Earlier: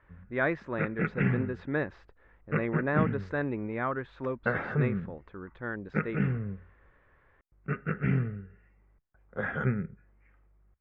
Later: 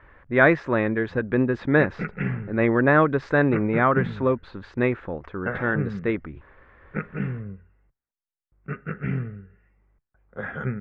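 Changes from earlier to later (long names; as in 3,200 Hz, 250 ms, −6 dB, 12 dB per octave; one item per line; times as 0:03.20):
speech +11.5 dB
background: entry +1.00 s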